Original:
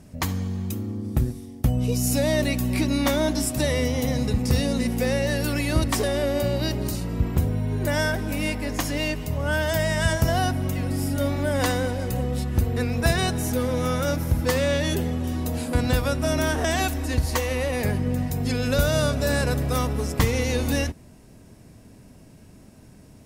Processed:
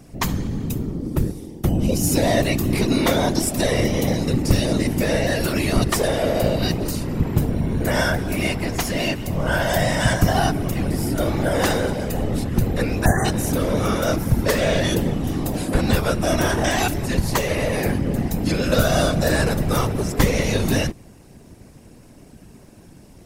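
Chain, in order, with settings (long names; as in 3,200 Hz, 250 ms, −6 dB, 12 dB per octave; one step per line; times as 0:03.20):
time-frequency box erased 0:13.05–0:13.25, 2,000–5,900 Hz
random phases in short frames
level +3.5 dB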